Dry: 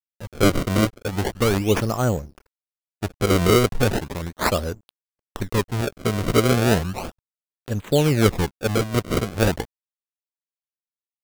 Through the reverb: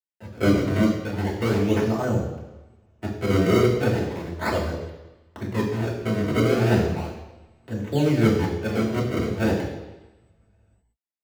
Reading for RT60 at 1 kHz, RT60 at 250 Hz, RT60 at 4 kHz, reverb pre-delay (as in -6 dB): 1.0 s, 1.0 s, 1.1 s, 3 ms